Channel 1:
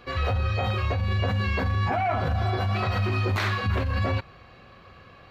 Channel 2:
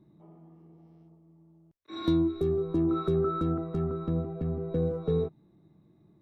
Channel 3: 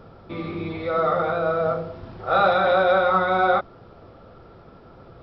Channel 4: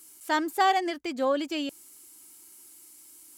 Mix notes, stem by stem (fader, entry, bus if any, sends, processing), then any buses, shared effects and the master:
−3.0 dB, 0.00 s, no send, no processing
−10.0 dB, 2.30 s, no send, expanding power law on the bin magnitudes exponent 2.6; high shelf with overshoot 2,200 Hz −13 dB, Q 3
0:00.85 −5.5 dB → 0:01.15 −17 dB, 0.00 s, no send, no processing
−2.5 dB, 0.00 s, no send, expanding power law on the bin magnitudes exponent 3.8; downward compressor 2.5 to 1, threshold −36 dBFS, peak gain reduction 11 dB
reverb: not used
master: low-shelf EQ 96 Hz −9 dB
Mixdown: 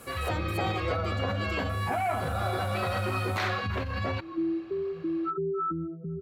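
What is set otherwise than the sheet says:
stem 2 −10.0 dB → −3.5 dB
stem 4: missing expanding power law on the bin magnitudes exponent 3.8

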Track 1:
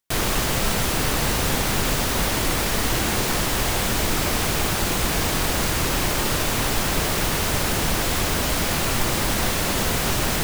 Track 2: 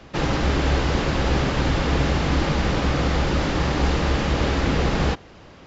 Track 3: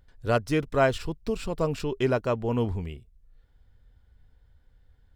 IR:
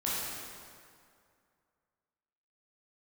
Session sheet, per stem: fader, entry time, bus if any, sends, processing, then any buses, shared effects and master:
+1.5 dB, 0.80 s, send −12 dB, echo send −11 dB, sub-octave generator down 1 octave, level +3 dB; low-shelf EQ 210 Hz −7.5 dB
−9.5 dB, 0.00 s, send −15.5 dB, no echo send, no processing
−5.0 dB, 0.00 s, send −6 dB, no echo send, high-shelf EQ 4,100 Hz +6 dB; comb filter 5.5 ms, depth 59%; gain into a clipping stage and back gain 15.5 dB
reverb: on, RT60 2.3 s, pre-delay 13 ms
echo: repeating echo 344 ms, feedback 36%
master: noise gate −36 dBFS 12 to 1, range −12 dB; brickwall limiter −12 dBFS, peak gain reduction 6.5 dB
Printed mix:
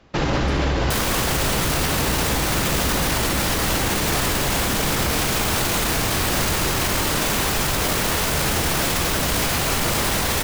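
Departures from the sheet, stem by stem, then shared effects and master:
stem 1 +1.5 dB → +9.5 dB
stem 2 −9.5 dB → +2.5 dB
stem 3 −5.0 dB → −12.5 dB

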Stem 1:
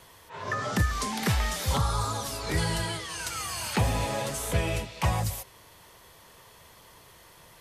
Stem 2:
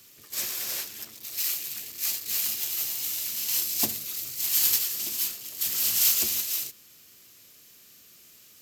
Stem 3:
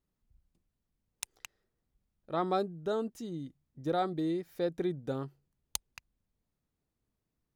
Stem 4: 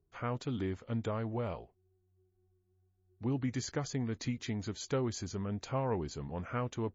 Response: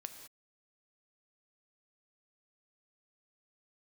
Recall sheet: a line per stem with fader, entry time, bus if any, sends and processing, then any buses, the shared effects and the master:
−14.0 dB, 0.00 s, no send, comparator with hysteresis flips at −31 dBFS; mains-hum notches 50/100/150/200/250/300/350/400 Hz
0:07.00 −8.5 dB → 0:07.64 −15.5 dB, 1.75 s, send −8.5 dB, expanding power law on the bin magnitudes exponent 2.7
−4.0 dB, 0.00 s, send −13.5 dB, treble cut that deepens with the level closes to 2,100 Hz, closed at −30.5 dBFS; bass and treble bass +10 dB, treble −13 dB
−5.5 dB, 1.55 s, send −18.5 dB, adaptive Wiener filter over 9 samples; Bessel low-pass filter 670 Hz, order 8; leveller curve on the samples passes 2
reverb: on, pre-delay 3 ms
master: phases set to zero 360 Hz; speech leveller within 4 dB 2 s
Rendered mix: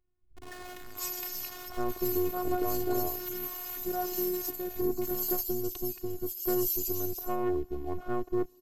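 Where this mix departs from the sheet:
stem 2: entry 1.75 s → 0.65 s
stem 4 −5.5 dB → +2.5 dB

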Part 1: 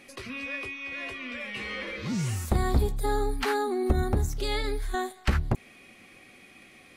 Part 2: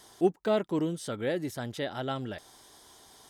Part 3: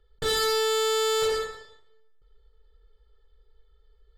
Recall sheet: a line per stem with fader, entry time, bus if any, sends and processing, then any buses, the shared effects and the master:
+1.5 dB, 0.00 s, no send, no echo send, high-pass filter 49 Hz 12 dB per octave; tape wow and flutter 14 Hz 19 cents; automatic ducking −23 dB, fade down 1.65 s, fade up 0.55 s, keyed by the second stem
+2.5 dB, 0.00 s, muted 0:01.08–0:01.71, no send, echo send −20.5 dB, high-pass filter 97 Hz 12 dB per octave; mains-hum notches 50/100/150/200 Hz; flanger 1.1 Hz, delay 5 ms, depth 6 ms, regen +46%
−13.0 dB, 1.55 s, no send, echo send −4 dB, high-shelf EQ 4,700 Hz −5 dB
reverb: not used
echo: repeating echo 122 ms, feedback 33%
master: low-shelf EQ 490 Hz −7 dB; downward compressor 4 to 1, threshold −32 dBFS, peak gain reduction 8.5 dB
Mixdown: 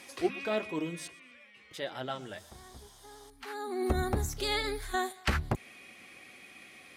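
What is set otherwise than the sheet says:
stem 3: muted
master: missing downward compressor 4 to 1, threshold −32 dBFS, peak gain reduction 8.5 dB

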